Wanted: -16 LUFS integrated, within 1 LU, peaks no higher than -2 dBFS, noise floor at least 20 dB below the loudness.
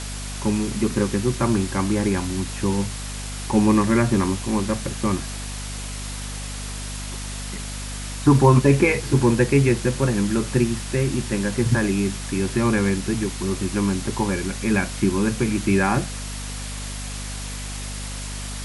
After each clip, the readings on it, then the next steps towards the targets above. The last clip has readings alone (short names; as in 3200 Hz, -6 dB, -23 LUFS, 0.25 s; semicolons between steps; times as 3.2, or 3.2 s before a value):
hum 50 Hz; harmonics up to 250 Hz; hum level -30 dBFS; noise floor -31 dBFS; noise floor target -43 dBFS; loudness -22.5 LUFS; peak -3.0 dBFS; loudness target -16.0 LUFS
-> de-hum 50 Hz, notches 5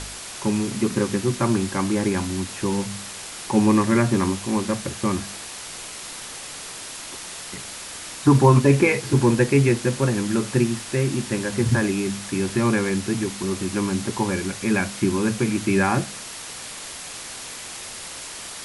hum none; noise floor -36 dBFS; noise floor target -43 dBFS
-> noise print and reduce 7 dB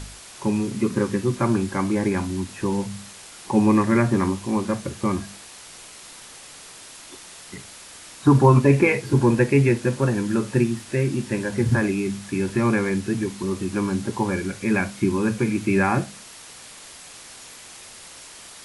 noise floor -43 dBFS; loudness -22.0 LUFS; peak -3.5 dBFS; loudness target -16.0 LUFS
-> gain +6 dB; limiter -2 dBFS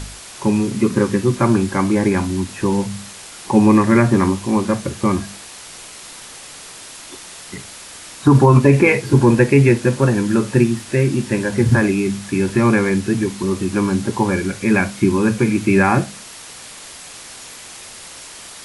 loudness -16.5 LUFS; peak -2.0 dBFS; noise floor -37 dBFS